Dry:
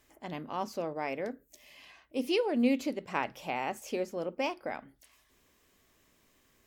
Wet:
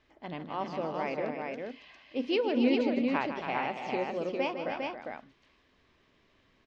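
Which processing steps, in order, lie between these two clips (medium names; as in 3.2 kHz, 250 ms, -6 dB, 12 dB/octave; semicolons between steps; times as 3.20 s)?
low-pass 4.4 kHz 24 dB/octave; multi-tap echo 156/277/403 ms -9.5/-8.5/-3.5 dB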